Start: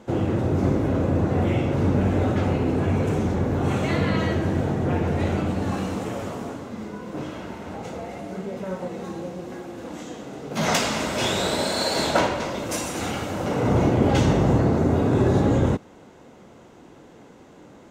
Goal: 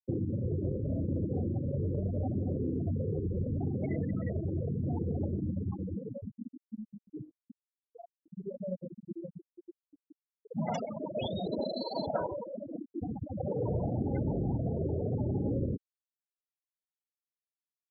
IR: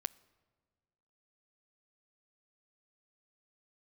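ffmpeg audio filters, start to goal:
-filter_complex "[0:a]afftfilt=real='re*gte(hypot(re,im),0.2)':imag='im*gte(hypot(re,im),0.2)':win_size=1024:overlap=0.75,flanger=delay=0.2:depth=2:regen=-29:speed=0.77:shape=triangular,acrossover=split=1300|3000[link_01][link_02][link_03];[link_01]acompressor=threshold=-30dB:ratio=4[link_04];[link_02]acompressor=threshold=-55dB:ratio=4[link_05];[link_03]acompressor=threshold=-46dB:ratio=4[link_06];[link_04][link_05][link_06]amix=inputs=3:normalize=0"

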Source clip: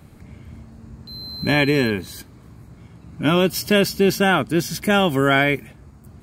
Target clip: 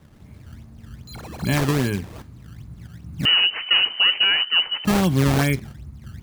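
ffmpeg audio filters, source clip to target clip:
ffmpeg -i in.wav -filter_complex "[0:a]asubboost=boost=4.5:cutoff=220,acrusher=samples=17:mix=1:aa=0.000001:lfo=1:lforange=27.2:lforate=2.5,flanger=delay=5.1:depth=2.9:regen=-86:speed=0.68:shape=triangular,asettb=1/sr,asplit=3[link_01][link_02][link_03];[link_01]atrim=end=3.254[link_04];[link_02]atrim=start=3.25:end=4.85,asetpts=PTS-STARTPTS,afade=type=in:duration=0.004:curve=qsin,afade=type=out:start_time=1.596:duration=0.004:curve=qsin,lowpass=frequency=2600:width_type=q:width=0.5098,lowpass=frequency=2600:width_type=q:width=0.6013,lowpass=frequency=2600:width_type=q:width=0.9,lowpass=frequency=2600:width_type=q:width=2.563,afreqshift=-3100[link_05];[link_03]atrim=start=4.846[link_06];[link_04][link_05]acrossfade=duration=0.004:curve1=hsin:curve2=qsin[link_07];[link_07][link_06]acrossfade=duration=0.004:curve1=qsin:curve2=hsin" out.wav

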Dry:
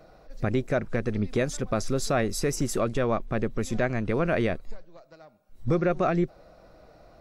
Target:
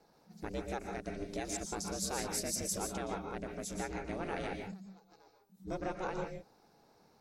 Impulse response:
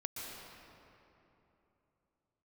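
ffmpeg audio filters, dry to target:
-filter_complex "[0:a]aeval=exprs='val(0)*sin(2*PI*190*n/s)':channel_layout=same,bass=frequency=250:gain=-5,treble=frequency=4000:gain=12[link_01];[1:a]atrim=start_sample=2205,afade=type=out:start_time=0.23:duration=0.01,atrim=end_sample=10584[link_02];[link_01][link_02]afir=irnorm=-1:irlink=0,volume=-7dB"

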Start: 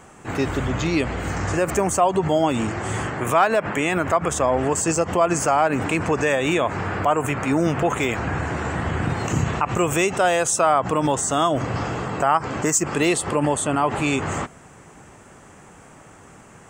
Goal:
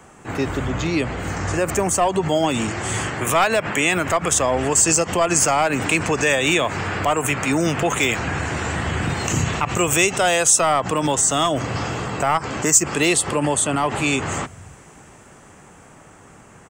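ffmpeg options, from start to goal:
ffmpeg -i in.wav -filter_complex "[0:a]acrossover=split=140|610|2300[link_01][link_02][link_03][link_04];[link_01]aecho=1:1:298:0.422[link_05];[link_03]aeval=exprs='clip(val(0),-1,0.1)':channel_layout=same[link_06];[link_04]dynaudnorm=framelen=350:gausssize=13:maxgain=11.5dB[link_07];[link_05][link_02][link_06][link_07]amix=inputs=4:normalize=0" out.wav

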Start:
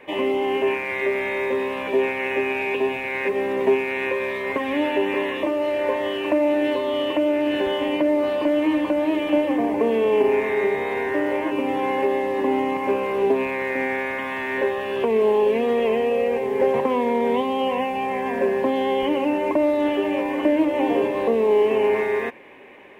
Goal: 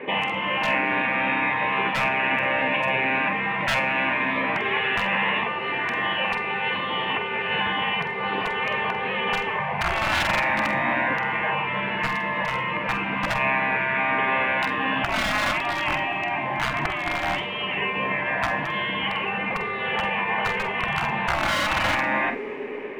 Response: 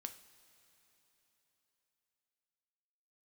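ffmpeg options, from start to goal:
-filter_complex "[0:a]highpass=120,equalizer=frequency=150:width_type=q:width=4:gain=4,equalizer=frequency=250:width_type=q:width=4:gain=5,equalizer=frequency=430:width_type=q:width=4:gain=6,equalizer=frequency=690:width_type=q:width=4:gain=-3,lowpass=frequency=3000:width=0.5412,lowpass=frequency=3000:width=1.3066,aeval=exprs='0.316*(abs(mod(val(0)/0.316+3,4)-2)-1)':channel_layout=same,asplit=2[link_01][link_02];[link_02]lowshelf=frequency=290:gain=3[link_03];[1:a]atrim=start_sample=2205,adelay=47[link_04];[link_03][link_04]afir=irnorm=-1:irlink=0,volume=-5.5dB[link_05];[link_01][link_05]amix=inputs=2:normalize=0,afftfilt=real='re*lt(hypot(re,im),0.158)':imag='im*lt(hypot(re,im),0.158)':win_size=1024:overlap=0.75,volume=8.5dB"

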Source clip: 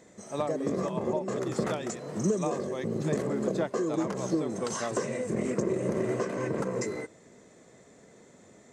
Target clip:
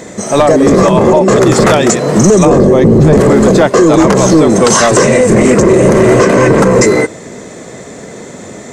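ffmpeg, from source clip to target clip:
ffmpeg -i in.wav -filter_complex "[0:a]asettb=1/sr,asplit=3[link_01][link_02][link_03];[link_01]atrim=end=2.454[link_04];[link_02]atrim=start=2.45:end=3.21,asetpts=PTS-STARTPTS,afade=type=in:duration=0.004:curve=qsin,afade=type=out:start_time=0.756:duration=0.004:curve=qsin,tiltshelf=frequency=730:gain=8.5[link_05];[link_03]atrim=start=3.206[link_06];[link_04][link_05]acrossfade=duration=0.004:curve1=hsin:curve2=qsin[link_07];[link_07][link_06]acrossfade=duration=0.004:curve1=qsin:curve2=hsin,apsyclip=28.5dB,volume=-1.5dB" out.wav

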